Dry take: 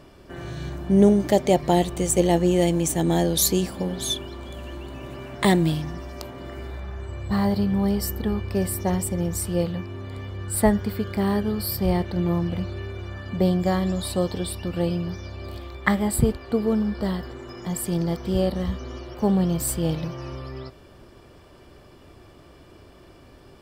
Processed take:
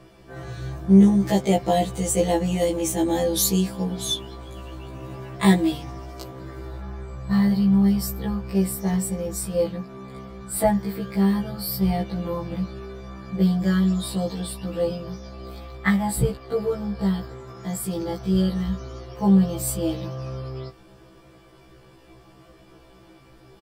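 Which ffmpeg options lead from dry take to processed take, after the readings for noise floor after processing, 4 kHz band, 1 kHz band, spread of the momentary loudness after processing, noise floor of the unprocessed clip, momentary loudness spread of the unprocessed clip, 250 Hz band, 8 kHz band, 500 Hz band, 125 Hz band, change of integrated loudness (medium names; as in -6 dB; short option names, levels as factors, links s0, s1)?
-51 dBFS, -0.5 dB, -0.5 dB, 19 LU, -50 dBFS, 17 LU, +2.0 dB, -1.0 dB, -1.5 dB, +0.5 dB, +0.5 dB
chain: -af "aecho=1:1:6:0.66,afftfilt=real='re*1.73*eq(mod(b,3),0)':imag='im*1.73*eq(mod(b,3),0)':win_size=2048:overlap=0.75"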